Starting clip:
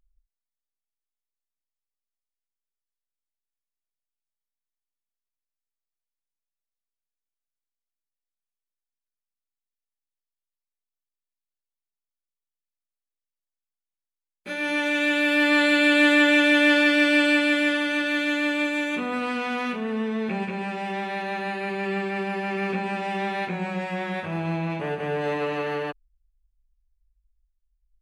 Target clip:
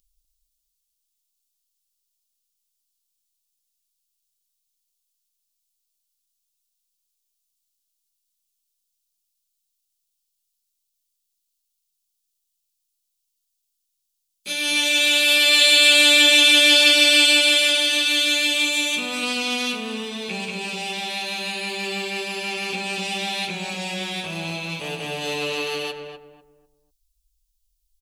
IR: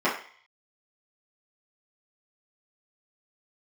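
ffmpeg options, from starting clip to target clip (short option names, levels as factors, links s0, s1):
-filter_complex "[0:a]asplit=2[s0][s1];[s1]adelay=247,lowpass=f=1100:p=1,volume=0.631,asplit=2[s2][s3];[s3]adelay=247,lowpass=f=1100:p=1,volume=0.32,asplit=2[s4][s5];[s5]adelay=247,lowpass=f=1100:p=1,volume=0.32,asplit=2[s6][s7];[s7]adelay=247,lowpass=f=1100:p=1,volume=0.32[s8];[s0][s2][s4][s6][s8]amix=inputs=5:normalize=0,flanger=delay=3.7:depth=4.8:regen=-75:speed=0.16:shape=sinusoidal,aexciter=amount=13.4:drive=2.7:freq=2700"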